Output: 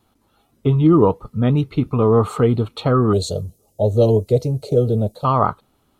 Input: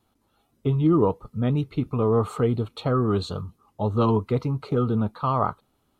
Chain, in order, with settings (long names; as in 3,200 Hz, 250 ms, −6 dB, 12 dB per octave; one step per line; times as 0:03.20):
0:03.13–0:05.25: drawn EQ curve 120 Hz 0 dB, 260 Hz −7 dB, 610 Hz +8 dB, 1,100 Hz −26 dB, 6,700 Hz +10 dB
level +6.5 dB